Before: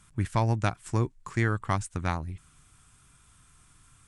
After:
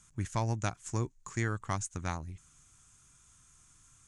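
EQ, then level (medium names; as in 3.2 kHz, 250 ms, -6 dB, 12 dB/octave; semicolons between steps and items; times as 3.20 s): peaking EQ 6.6 kHz +14.5 dB 0.45 oct; -6.5 dB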